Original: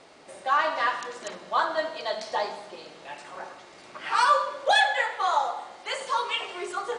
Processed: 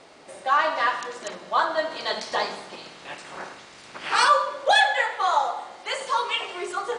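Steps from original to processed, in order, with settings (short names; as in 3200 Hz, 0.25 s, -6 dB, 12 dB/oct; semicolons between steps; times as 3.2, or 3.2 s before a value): 1.9–4.27 spectral limiter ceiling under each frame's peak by 12 dB; gain +2.5 dB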